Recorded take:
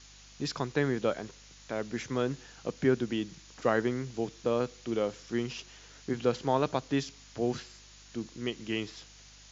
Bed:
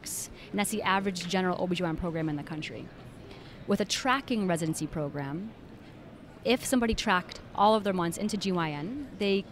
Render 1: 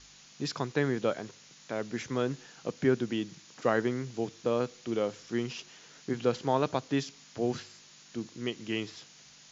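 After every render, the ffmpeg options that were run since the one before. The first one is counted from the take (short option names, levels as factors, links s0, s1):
-af "bandreject=f=50:t=h:w=4,bandreject=f=100:t=h:w=4"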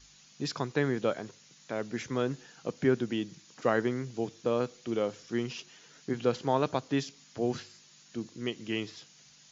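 -af "afftdn=nr=6:nf=-56"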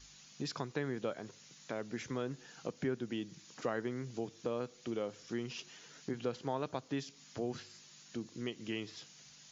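-af "acompressor=threshold=0.01:ratio=2"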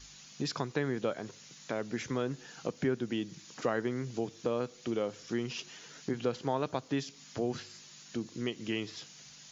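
-af "volume=1.78"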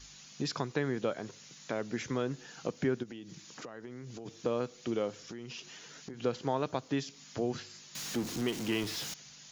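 -filter_complex "[0:a]asplit=3[s0][s1][s2];[s0]afade=t=out:st=3.02:d=0.02[s3];[s1]acompressor=threshold=0.00891:ratio=8:attack=3.2:release=140:knee=1:detection=peak,afade=t=in:st=3.02:d=0.02,afade=t=out:st=4.25:d=0.02[s4];[s2]afade=t=in:st=4.25:d=0.02[s5];[s3][s4][s5]amix=inputs=3:normalize=0,asettb=1/sr,asplit=3[s6][s7][s8];[s6]atrim=end=5.224[s9];[s7]atrim=start=5.22:end=6.24,asetpts=PTS-STARTPTS,afade=t=in:d=0.004:c=qsin,afade=t=out:st=1.016:d=0.004:c=qsin,acompressor=threshold=0.01:ratio=6:attack=3.2:release=140:knee=1:detection=peak[s10];[s8]atrim=start=6.236[s11];[s9][s10]acrossfade=d=0.004:c1=hsin:c2=qsin[s12];[s12][s11]acrossfade=d=0.004:c1=qsin:c2=hsin,asettb=1/sr,asplit=3[s13][s14][s15];[s13]atrim=end=7.954[s16];[s14]atrim=start=7.95:end=9.14,asetpts=PTS-STARTPTS,afade=t=in:d=0.004:c=qsin,afade=t=out:st=1.186:d=0.004:c=qsin,aeval=exprs='val(0)+0.5*0.0158*sgn(val(0))':c=same[s17];[s15]atrim=start=9.136[s18];[s16][s17]acrossfade=d=0.004:c1=hsin:c2=qsin[s19];[s19][s18]acrossfade=d=0.004:c1=qsin:c2=hsin"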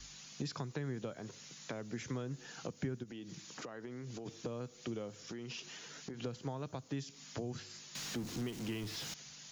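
-filter_complex "[0:a]acrossover=split=170|7000[s0][s1][s2];[s1]acompressor=threshold=0.00891:ratio=6[s3];[s2]alimiter=level_in=15.8:limit=0.0631:level=0:latency=1,volume=0.0631[s4];[s0][s3][s4]amix=inputs=3:normalize=0"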